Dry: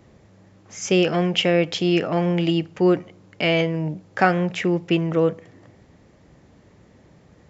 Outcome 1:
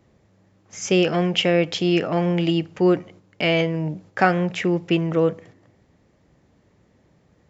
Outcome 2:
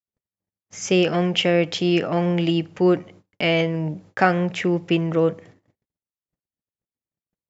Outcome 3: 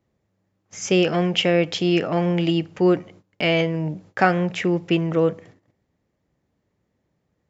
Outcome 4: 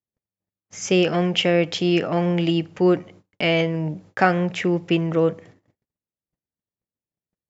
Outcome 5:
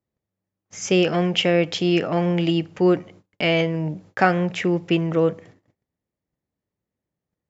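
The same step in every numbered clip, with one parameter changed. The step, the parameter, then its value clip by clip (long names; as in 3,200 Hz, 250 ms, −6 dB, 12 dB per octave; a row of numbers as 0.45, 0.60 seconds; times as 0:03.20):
noise gate, range: −7, −59, −20, −46, −33 decibels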